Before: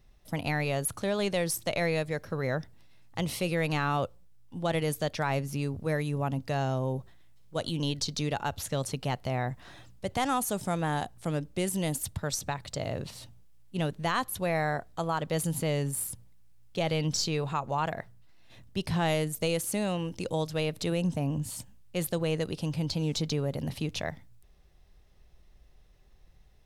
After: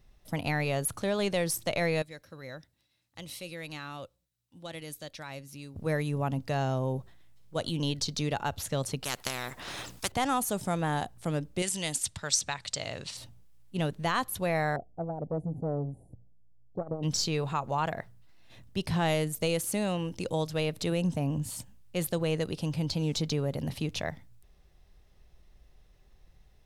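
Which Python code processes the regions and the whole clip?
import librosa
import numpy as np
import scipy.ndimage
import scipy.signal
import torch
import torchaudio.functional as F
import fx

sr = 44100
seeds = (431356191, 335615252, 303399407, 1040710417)

y = fx.chain(x, sr, fx.tone_stack(knobs='5-5-5'),
    fx.small_body(hz=(310.0, 530.0, 3900.0), ring_ms=25, db=9), at=(2.02, 5.76))
y = fx.chain(y, sr, fx.transient(attack_db=6, sustain_db=-8),
    fx.spectral_comp(ratio=4.0), at=(9.04, 10.12))
y = fx.chain(y, sr, fx.lowpass(hz=8900.0, slope=24),
    fx.tilt_shelf(db=-8.0, hz=1200.0), at=(11.62, 13.17))
y = fx.chain(y, sr, fx.ellip_lowpass(hz=750.0, order=4, stop_db=40),
    fx.resample_bad(factor=2, down='none', up='filtered'),
    fx.transformer_sat(knee_hz=280.0), at=(14.76, 17.03))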